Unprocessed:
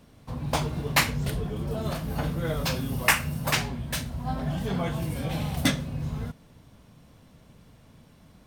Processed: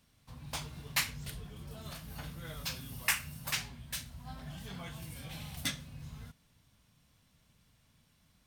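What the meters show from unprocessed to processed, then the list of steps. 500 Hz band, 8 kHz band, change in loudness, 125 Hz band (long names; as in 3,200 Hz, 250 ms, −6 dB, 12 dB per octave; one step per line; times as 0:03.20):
−19.5 dB, −6.0 dB, −10.5 dB, −15.5 dB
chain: guitar amp tone stack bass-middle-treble 5-5-5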